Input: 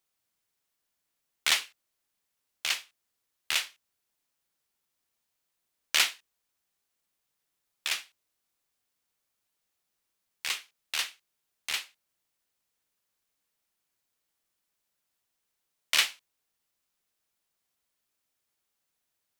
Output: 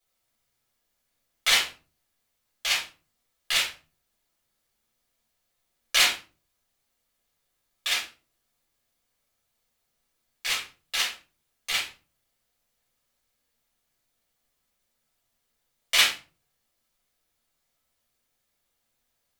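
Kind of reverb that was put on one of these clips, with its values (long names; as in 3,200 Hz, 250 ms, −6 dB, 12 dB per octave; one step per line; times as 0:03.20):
rectangular room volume 170 cubic metres, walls furnished, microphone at 5.7 metres
level −5 dB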